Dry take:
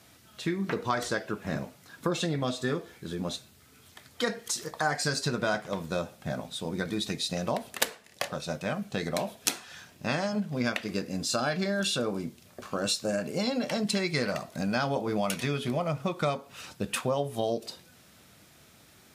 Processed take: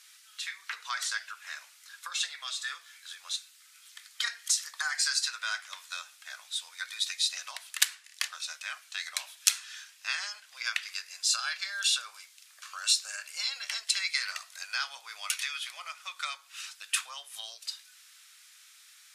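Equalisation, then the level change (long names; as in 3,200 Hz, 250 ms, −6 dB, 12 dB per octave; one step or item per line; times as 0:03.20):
high-pass filter 1,300 Hz 24 dB per octave
low-pass filter 9,900 Hz 12 dB per octave
spectral tilt +2.5 dB per octave
−1.0 dB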